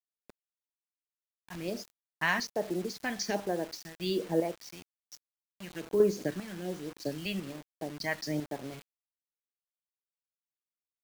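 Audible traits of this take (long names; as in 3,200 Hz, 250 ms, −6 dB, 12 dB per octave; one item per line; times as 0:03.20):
phaser sweep stages 2, 1.2 Hz, lowest notch 380–3,700 Hz
chopped level 1 Hz, depth 60%, duty 40%
a quantiser's noise floor 8 bits, dither none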